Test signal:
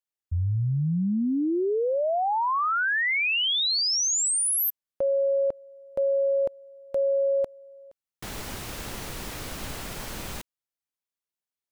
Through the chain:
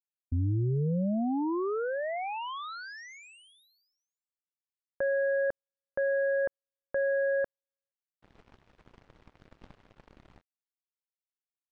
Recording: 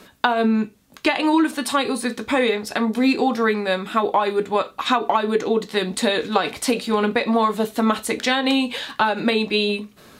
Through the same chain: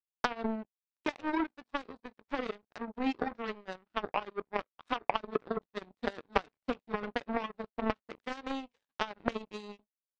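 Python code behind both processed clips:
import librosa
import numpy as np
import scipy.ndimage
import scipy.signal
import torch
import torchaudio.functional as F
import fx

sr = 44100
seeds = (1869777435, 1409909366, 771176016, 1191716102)

y = fx.spacing_loss(x, sr, db_at_10k=35)
y = fx.power_curve(y, sr, exponent=3.0)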